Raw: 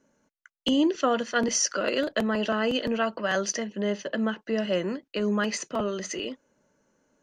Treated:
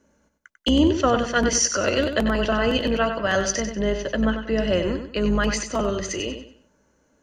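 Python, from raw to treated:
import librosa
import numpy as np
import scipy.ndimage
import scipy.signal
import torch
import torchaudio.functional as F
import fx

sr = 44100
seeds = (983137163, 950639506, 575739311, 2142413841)

y = fx.octave_divider(x, sr, octaves=2, level_db=-5.0)
y = fx.echo_feedback(y, sr, ms=95, feedback_pct=32, wet_db=-8)
y = y * librosa.db_to_amplitude(4.0)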